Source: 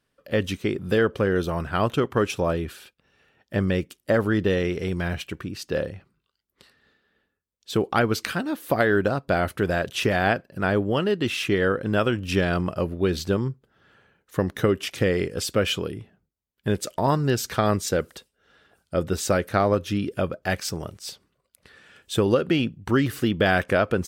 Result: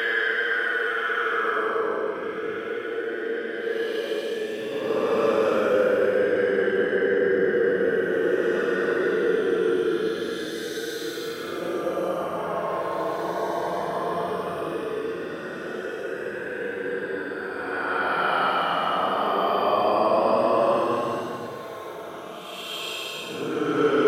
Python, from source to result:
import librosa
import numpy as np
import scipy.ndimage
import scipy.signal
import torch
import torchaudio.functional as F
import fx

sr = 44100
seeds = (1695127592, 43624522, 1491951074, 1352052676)

y = fx.reverse_delay_fb(x, sr, ms=214, feedback_pct=67, wet_db=-10.5)
y = fx.paulstretch(y, sr, seeds[0], factor=24.0, window_s=0.05, from_s=0.99)
y = fx.filter_sweep_highpass(y, sr, from_hz=1000.0, to_hz=380.0, start_s=1.24, end_s=2.52, q=0.94)